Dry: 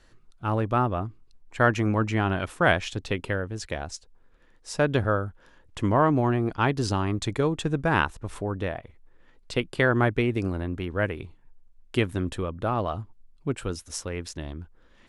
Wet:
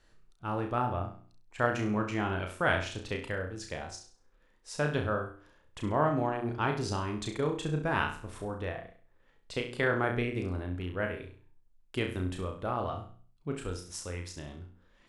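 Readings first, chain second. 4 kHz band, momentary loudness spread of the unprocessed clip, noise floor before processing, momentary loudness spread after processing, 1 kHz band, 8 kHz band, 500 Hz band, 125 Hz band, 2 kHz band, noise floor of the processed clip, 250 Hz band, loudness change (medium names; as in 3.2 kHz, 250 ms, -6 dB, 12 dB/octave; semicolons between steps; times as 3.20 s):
-5.5 dB, 15 LU, -57 dBFS, 14 LU, -5.5 dB, -5.5 dB, -6.0 dB, -7.5 dB, -5.5 dB, -65 dBFS, -7.5 dB, -6.5 dB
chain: hum notches 60/120/180/240/300/360 Hz; flutter echo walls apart 5.7 m, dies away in 0.43 s; trim -7.5 dB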